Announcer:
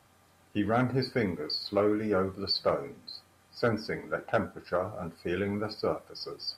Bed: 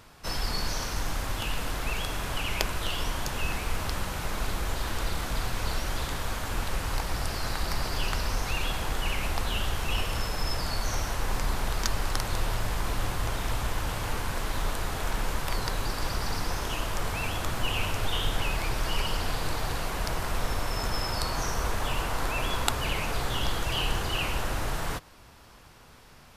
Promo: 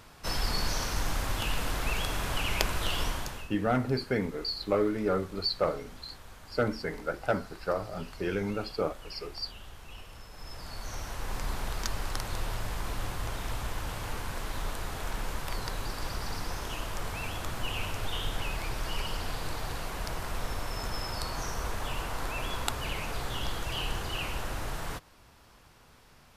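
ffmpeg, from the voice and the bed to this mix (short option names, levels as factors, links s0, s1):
-filter_complex "[0:a]adelay=2950,volume=0.944[s0];[1:a]volume=4.47,afade=t=out:st=3.02:d=0.47:silence=0.125893,afade=t=in:st=10.29:d=1.21:silence=0.223872[s1];[s0][s1]amix=inputs=2:normalize=0"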